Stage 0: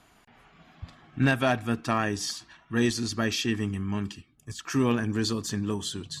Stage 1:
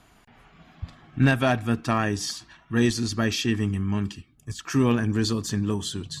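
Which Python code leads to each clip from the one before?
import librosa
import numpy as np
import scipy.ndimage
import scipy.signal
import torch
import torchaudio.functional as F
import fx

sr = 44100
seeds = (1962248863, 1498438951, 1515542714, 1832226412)

y = fx.low_shelf(x, sr, hz=160.0, db=6.0)
y = y * librosa.db_to_amplitude(1.5)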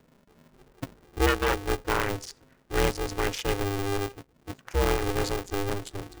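y = fx.wiener(x, sr, points=41)
y = fx.graphic_eq(y, sr, hz=(125, 500, 4000), db=(-7, -11, -8))
y = y * np.sign(np.sin(2.0 * np.pi * 200.0 * np.arange(len(y)) / sr))
y = y * librosa.db_to_amplitude(2.0)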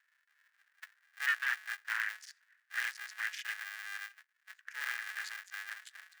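y = fx.ladder_highpass(x, sr, hz=1600.0, resonance_pct=75)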